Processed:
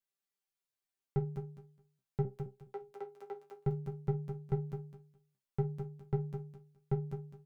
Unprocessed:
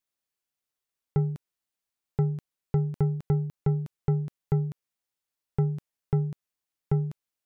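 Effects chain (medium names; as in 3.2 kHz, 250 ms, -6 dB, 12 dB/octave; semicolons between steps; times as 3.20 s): 2.25–3.58 s: Bessel high-pass 530 Hz, order 6; chord resonator C3 fifth, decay 0.2 s; feedback delay 210 ms, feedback 19%, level -8 dB; trim +5 dB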